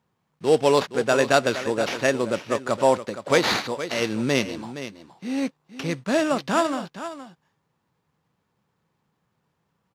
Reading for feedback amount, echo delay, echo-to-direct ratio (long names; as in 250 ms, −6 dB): repeats not evenly spaced, 468 ms, −12.0 dB